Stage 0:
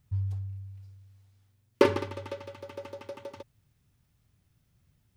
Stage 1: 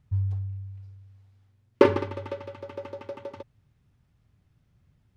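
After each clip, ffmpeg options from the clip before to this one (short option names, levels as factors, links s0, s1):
-af "aemphasis=mode=reproduction:type=75kf,volume=1.58"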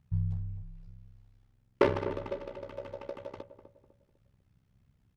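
-filter_complex "[0:a]tremolo=f=65:d=0.857,asoftclip=type=tanh:threshold=0.211,asplit=2[s0][s1];[s1]adelay=250,lowpass=f=870:p=1,volume=0.335,asplit=2[s2][s3];[s3]adelay=250,lowpass=f=870:p=1,volume=0.41,asplit=2[s4][s5];[s5]adelay=250,lowpass=f=870:p=1,volume=0.41,asplit=2[s6][s7];[s7]adelay=250,lowpass=f=870:p=1,volume=0.41[s8];[s2][s4][s6][s8]amix=inputs=4:normalize=0[s9];[s0][s9]amix=inputs=2:normalize=0"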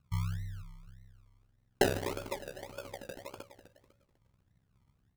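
-af "acrusher=samples=32:mix=1:aa=0.000001:lfo=1:lforange=19.2:lforate=1.7,volume=0.708"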